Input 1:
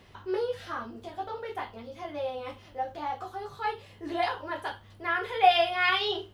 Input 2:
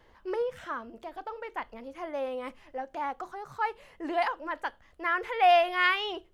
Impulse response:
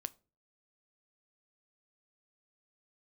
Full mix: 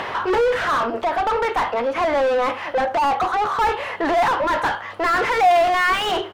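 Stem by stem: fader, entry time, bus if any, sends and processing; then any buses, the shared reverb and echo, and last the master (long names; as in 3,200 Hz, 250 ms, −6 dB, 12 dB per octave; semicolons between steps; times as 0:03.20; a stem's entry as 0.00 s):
+1.0 dB, 0.00 s, no send, automatic ducking −9 dB, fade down 1.10 s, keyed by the second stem
+1.0 dB, 0.5 ms, no send, high-pass filter 270 Hz 12 dB per octave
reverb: not used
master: drawn EQ curve 280 Hz 0 dB, 1,200 Hz +9 dB, 4,700 Hz +3 dB; upward compression, threshold −43 dBFS; mid-hump overdrive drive 33 dB, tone 1,200 Hz, clips at −10.5 dBFS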